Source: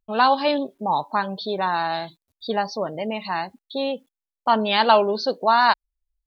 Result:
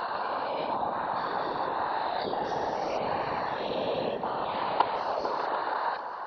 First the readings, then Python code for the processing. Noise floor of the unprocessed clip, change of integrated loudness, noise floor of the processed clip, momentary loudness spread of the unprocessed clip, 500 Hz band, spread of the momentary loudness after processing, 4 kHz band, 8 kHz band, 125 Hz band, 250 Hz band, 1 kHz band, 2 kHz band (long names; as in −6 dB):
below −85 dBFS, −8.5 dB, −35 dBFS, 12 LU, −7.5 dB, 3 LU, −12.5 dB, can't be measured, −6.5 dB, −11.0 dB, −7.5 dB, −9.5 dB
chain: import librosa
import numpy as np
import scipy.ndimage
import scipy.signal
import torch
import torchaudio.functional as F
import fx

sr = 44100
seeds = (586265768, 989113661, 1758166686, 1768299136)

p1 = fx.spec_dilate(x, sr, span_ms=480)
p2 = fx.dereverb_blind(p1, sr, rt60_s=0.6)
p3 = fx.peak_eq(p2, sr, hz=830.0, db=10.0, octaves=2.6)
p4 = fx.level_steps(p3, sr, step_db=24)
p5 = p4 + fx.echo_opening(p4, sr, ms=148, hz=400, octaves=1, feedback_pct=70, wet_db=-3, dry=0)
p6 = fx.whisperise(p5, sr, seeds[0])
y = p6 * 10.0 ** (-8.0 / 20.0)